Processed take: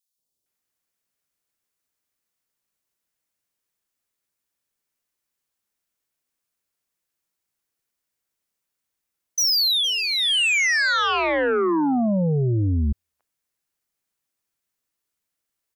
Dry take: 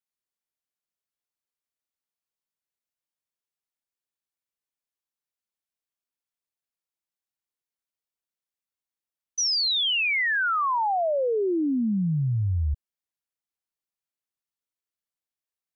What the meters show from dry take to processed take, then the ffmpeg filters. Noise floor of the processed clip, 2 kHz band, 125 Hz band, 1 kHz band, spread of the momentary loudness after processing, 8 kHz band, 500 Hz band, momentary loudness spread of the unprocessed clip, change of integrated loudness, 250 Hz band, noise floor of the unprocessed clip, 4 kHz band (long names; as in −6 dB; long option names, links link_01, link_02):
−82 dBFS, +4.5 dB, +3.0 dB, +0.5 dB, 6 LU, can't be measured, +3.0 dB, 7 LU, +4.0 dB, +4.0 dB, below −85 dBFS, +6.0 dB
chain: -filter_complex "[0:a]acrossover=split=820|3500[link_01][link_02][link_03];[link_01]adelay=180[link_04];[link_02]adelay=460[link_05];[link_04][link_05][link_03]amix=inputs=3:normalize=0,aeval=exprs='0.126*sin(PI/2*2.24*val(0)/0.126)':channel_layout=same"